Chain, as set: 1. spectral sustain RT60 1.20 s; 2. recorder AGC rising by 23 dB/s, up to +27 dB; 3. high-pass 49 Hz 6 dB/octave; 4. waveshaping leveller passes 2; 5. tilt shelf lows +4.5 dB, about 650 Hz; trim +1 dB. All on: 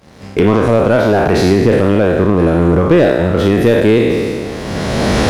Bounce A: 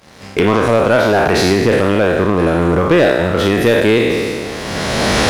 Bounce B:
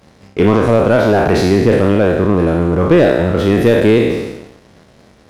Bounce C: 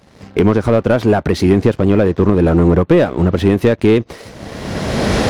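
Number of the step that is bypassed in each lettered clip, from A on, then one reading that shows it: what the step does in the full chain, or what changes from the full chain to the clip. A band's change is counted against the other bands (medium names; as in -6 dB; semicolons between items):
5, 125 Hz band -5.5 dB; 2, momentary loudness spread change -3 LU; 1, 125 Hz band +3.0 dB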